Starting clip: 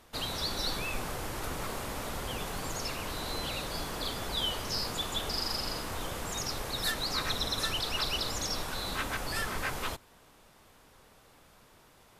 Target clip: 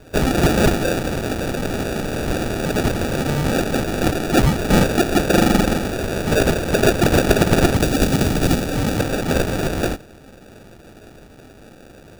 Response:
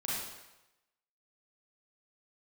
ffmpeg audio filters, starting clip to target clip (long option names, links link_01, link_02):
-filter_complex "[0:a]aexciter=amount=4.7:drive=9.9:freq=2000,acrusher=samples=42:mix=1:aa=0.000001,asettb=1/sr,asplit=3[link_01][link_02][link_03];[link_01]atrim=end=7.744[link_04];[link_02]atrim=start=7.74:end=9,asetpts=PTS-STARTPTS,afade=type=in:duration=0.004:curve=qsin,afade=type=out:start_time=1.256:duration=0.004:curve=qsin,acrossover=split=300|3000[link_05][link_06][link_07];[link_06]acompressor=threshold=-24dB:ratio=2[link_08];[link_05][link_08][link_07]amix=inputs=3:normalize=0[link_09];[link_03]atrim=start=8.996[link_10];[link_04][link_09]acrossfade=duration=0.004:curve1=hsin:curve2=qsin[link_11];[link_11][link_10]acrossfade=duration=0.004:curve1=qsin:curve2=hsin,volume=-1dB"